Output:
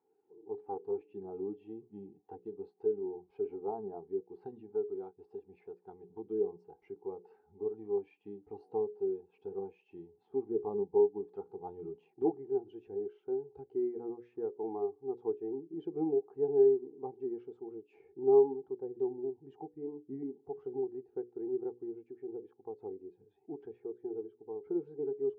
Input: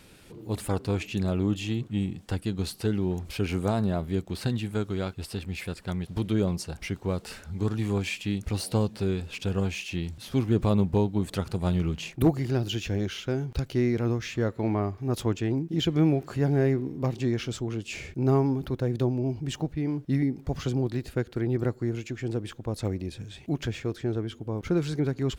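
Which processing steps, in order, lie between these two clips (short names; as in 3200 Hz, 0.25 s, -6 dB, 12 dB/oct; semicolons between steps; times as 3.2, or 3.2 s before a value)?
double band-pass 580 Hz, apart 0.91 oct; notches 60/120/180/240/300/360/420/480/540 Hz; in parallel at -1 dB: compressor, threshold -48 dBFS, peak gain reduction 21.5 dB; on the sum: spectral expander 1.5:1; gain +3.5 dB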